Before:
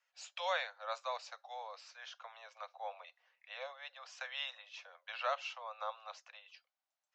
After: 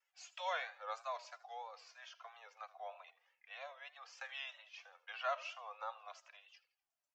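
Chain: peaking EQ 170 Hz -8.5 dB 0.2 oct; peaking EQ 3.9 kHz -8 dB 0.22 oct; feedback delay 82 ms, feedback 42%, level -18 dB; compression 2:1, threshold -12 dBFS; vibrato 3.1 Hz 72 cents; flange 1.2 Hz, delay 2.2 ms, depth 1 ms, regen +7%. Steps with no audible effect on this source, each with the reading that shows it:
peaking EQ 170 Hz: input has nothing below 430 Hz; compression, threshold -12 dBFS: peak at its input -23.5 dBFS

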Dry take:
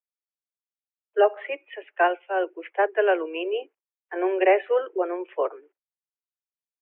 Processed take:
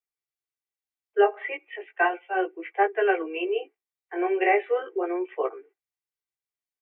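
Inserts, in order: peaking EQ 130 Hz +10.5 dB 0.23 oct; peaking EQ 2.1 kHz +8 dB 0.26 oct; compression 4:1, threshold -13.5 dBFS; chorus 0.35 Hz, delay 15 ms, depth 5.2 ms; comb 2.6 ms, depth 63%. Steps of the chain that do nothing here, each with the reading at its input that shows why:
peaking EQ 130 Hz: input has nothing below 300 Hz

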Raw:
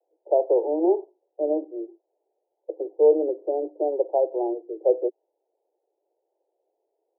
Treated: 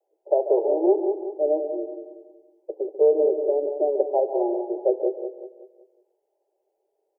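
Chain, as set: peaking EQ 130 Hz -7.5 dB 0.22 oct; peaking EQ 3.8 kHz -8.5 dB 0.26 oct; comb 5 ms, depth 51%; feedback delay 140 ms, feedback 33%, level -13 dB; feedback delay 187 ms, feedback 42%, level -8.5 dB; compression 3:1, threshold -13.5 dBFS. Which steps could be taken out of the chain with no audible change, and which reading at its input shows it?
peaking EQ 130 Hz: input has nothing below 270 Hz; peaking EQ 3.8 kHz: input has nothing above 850 Hz

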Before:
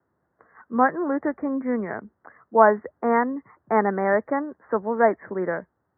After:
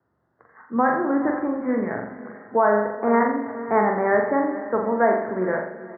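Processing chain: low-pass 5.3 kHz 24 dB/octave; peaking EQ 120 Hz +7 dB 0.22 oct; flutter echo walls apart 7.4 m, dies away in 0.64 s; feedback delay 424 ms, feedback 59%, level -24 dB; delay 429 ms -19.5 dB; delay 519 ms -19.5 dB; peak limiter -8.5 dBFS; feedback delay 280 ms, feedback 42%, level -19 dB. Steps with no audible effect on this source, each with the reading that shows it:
low-pass 5.3 kHz: input has nothing above 2.2 kHz

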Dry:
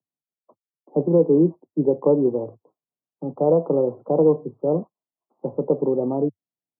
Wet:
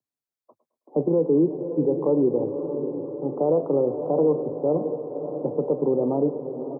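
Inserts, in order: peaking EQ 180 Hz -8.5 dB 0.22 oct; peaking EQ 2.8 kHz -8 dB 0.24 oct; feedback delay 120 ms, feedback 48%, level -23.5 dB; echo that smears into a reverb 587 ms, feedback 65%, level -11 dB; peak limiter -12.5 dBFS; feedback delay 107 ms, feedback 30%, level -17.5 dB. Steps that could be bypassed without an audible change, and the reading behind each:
peaking EQ 2.8 kHz: input has nothing above 1.1 kHz

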